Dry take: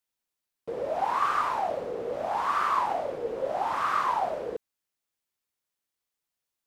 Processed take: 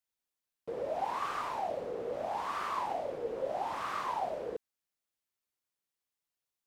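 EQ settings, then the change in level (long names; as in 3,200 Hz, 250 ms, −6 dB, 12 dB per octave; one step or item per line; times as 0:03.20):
dynamic equaliser 1,300 Hz, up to −7 dB, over −40 dBFS, Q 1.6
−4.5 dB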